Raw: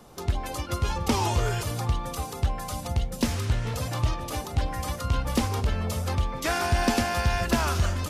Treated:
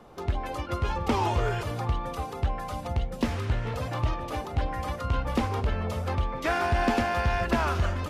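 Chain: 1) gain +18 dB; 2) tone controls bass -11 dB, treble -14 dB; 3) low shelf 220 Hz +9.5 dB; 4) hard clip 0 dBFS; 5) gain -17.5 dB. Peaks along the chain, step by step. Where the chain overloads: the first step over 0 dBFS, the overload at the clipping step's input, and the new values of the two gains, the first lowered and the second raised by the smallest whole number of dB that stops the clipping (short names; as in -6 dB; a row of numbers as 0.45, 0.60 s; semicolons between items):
+4.0, +5.0, +4.5, 0.0, -17.5 dBFS; step 1, 4.5 dB; step 1 +13 dB, step 5 -12.5 dB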